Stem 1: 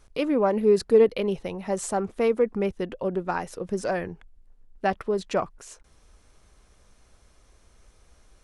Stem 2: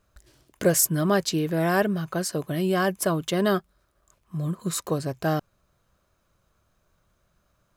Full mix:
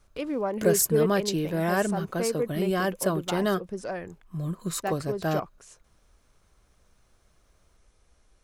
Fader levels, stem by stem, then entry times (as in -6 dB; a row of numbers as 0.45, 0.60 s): -6.5, -3.0 dB; 0.00, 0.00 s